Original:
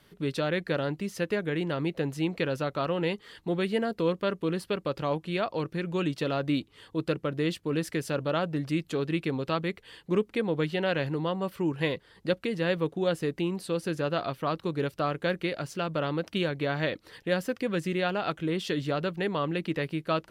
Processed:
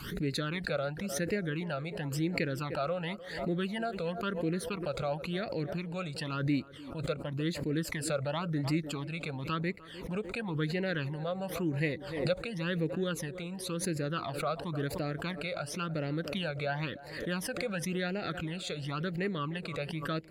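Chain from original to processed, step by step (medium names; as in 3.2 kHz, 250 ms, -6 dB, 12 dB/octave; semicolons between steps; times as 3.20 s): phase shifter stages 12, 0.95 Hz, lowest notch 300–1100 Hz; band-passed feedback delay 301 ms, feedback 58%, band-pass 550 Hz, level -16 dB; swell ahead of each attack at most 64 dB/s; trim -2 dB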